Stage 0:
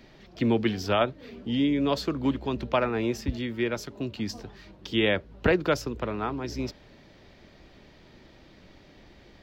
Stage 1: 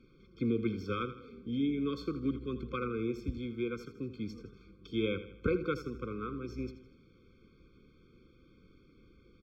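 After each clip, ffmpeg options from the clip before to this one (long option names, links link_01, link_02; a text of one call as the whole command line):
ffmpeg -i in.wav -af "highshelf=frequency=3700:gain=-10.5,aecho=1:1:81|162|243|324|405:0.224|0.103|0.0474|0.0218|0.01,afftfilt=real='re*eq(mod(floor(b*sr/1024/520),2),0)':imag='im*eq(mod(floor(b*sr/1024/520),2),0)':win_size=1024:overlap=0.75,volume=-7dB" out.wav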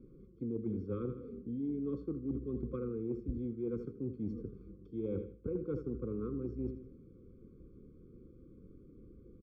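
ffmpeg -i in.wav -af "firequalizer=gain_entry='entry(430,0);entry(1500,-21);entry(2500,-29)':delay=0.05:min_phase=1,areverse,acompressor=threshold=-39dB:ratio=12,areverse,volume=5.5dB" out.wav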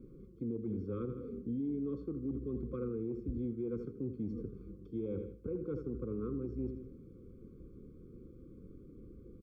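ffmpeg -i in.wav -af "alimiter=level_in=8.5dB:limit=-24dB:level=0:latency=1:release=129,volume=-8.5dB,volume=3dB" out.wav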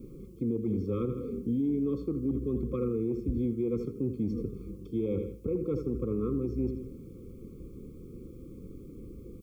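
ffmpeg -i in.wav -af "asuperstop=centerf=1700:order=20:qfactor=2.4,aexciter=amount=2.6:drive=3.2:freq=2200,volume=7.5dB" out.wav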